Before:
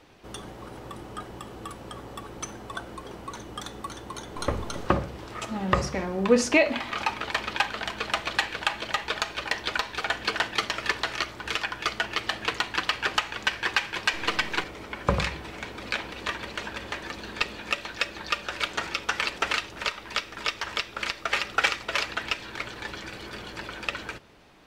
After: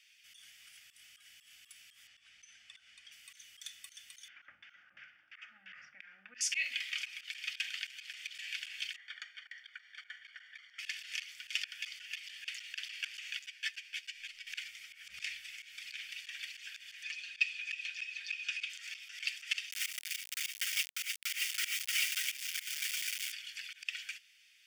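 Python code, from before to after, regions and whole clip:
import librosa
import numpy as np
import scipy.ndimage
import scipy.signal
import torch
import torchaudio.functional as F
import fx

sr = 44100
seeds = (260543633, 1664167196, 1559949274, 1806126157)

y = fx.chain(x, sr, fx.lowpass(hz=6900.0, slope=12),
    fx.high_shelf(hz=4300.0, db=-7.0), at=(2.07, 3.12))
y = fx.chain(y, sr, fx.filter_lfo_lowpass(shape='saw_down', hz=2.9, low_hz=640.0, high_hz=2800.0, q=1.1),
    fx.cabinet(low_hz=160.0, low_slope=12, high_hz=6400.0, hz=(320.0, 980.0, 1500.0, 4000.0), db=(3, 4, 10, -8)), at=(4.28, 6.41))
y = fx.chain(y, sr, fx.savgol(points=41),
    fx.low_shelf(hz=410.0, db=-11.0), at=(8.96, 10.79))
y = fx.chain(y, sr, fx.transient(attack_db=5, sustain_db=-7),
    fx.comb_fb(f0_hz=150.0, decay_s=1.6, harmonics='all', damping=0.0, mix_pct=30),
    fx.ensemble(), at=(13.39, 14.47))
y = fx.chain(y, sr, fx.lowpass(hz=7200.0, slope=12),
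    fx.notch_comb(f0_hz=190.0),
    fx.small_body(hz=(530.0, 2500.0), ring_ms=35, db=14), at=(17.03, 18.7))
y = fx.chain(y, sr, fx.air_absorb(metres=180.0),
    fx.notch_comb(f0_hz=860.0),
    fx.quant_companded(bits=2), at=(19.71, 23.32))
y = scipy.signal.sosfilt(scipy.signal.cheby2(4, 40, 1100.0, 'highpass', fs=sr, output='sos'), y)
y = fx.notch(y, sr, hz=4000.0, q=5.1)
y = fx.auto_swell(y, sr, attack_ms=116.0)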